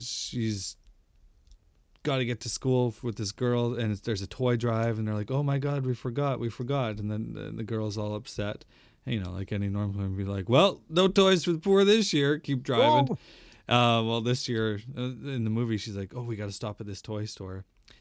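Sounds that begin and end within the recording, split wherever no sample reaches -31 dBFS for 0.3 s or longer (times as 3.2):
2.05–8.55
9.07–13.15
13.69–17.59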